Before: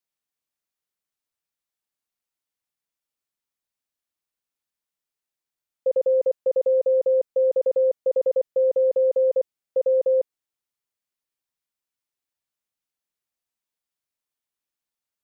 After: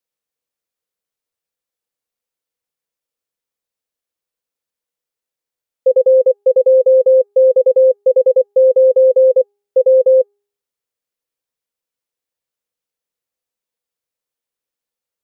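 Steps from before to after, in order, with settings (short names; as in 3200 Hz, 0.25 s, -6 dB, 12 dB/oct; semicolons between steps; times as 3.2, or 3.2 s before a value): bell 490 Hz +11.5 dB 0.34 oct; de-hum 406.9 Hz, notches 4; gain +1.5 dB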